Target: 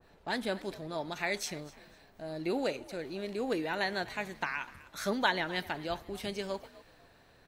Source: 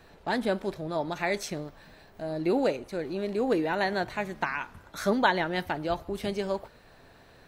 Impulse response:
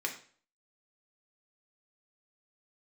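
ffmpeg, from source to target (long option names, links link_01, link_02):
-filter_complex "[0:a]asplit=2[link_01][link_02];[link_02]asplit=3[link_03][link_04][link_05];[link_03]adelay=250,afreqshift=55,volume=-19.5dB[link_06];[link_04]adelay=500,afreqshift=110,volume=-29.7dB[link_07];[link_05]adelay=750,afreqshift=165,volume=-39.8dB[link_08];[link_06][link_07][link_08]amix=inputs=3:normalize=0[link_09];[link_01][link_09]amix=inputs=2:normalize=0,adynamicequalizer=threshold=0.00631:dfrequency=1600:dqfactor=0.7:tfrequency=1600:tqfactor=0.7:attack=5:release=100:ratio=0.375:range=3.5:mode=boostabove:tftype=highshelf,volume=-7dB"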